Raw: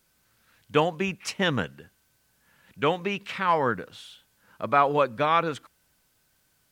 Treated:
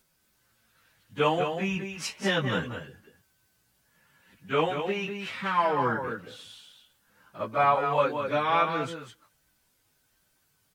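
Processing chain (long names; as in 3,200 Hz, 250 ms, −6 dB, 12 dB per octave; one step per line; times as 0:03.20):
on a send: single-tap delay 123 ms −7 dB
on the sum: time stretch by phase vocoder 1.6×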